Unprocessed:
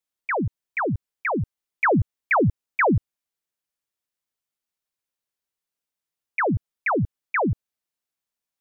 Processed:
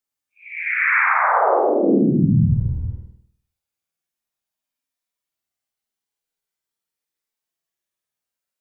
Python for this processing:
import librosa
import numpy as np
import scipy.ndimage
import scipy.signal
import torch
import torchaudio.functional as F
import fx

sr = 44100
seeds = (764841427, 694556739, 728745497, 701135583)

y = fx.paulstretch(x, sr, seeds[0], factor=10.0, window_s=0.1, from_s=2.71)
y = fx.room_flutter(y, sr, wall_m=8.6, rt60_s=0.62)